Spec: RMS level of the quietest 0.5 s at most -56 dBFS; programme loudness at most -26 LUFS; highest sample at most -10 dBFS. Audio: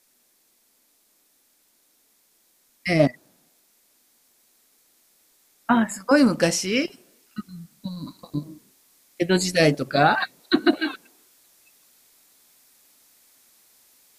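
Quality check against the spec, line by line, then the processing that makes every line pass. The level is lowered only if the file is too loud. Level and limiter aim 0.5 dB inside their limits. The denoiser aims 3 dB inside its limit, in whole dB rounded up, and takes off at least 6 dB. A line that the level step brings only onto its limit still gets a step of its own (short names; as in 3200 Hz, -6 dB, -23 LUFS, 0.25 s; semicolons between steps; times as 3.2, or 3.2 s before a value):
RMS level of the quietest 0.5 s -64 dBFS: OK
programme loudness -22.0 LUFS: fail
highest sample -5.0 dBFS: fail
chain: gain -4.5 dB; limiter -10.5 dBFS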